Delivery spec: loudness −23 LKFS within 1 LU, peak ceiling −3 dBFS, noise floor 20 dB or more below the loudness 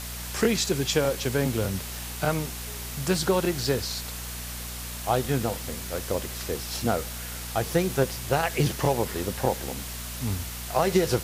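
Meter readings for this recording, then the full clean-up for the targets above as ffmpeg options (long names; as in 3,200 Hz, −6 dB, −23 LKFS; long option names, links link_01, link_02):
mains hum 60 Hz; hum harmonics up to 240 Hz; level of the hum −37 dBFS; background noise floor −36 dBFS; target noise floor −48 dBFS; integrated loudness −27.5 LKFS; sample peak −9.0 dBFS; target loudness −23.0 LKFS
→ -af "bandreject=frequency=60:width_type=h:width=4,bandreject=frequency=120:width_type=h:width=4,bandreject=frequency=180:width_type=h:width=4,bandreject=frequency=240:width_type=h:width=4"
-af "afftdn=noise_reduction=12:noise_floor=-36"
-af "volume=4.5dB"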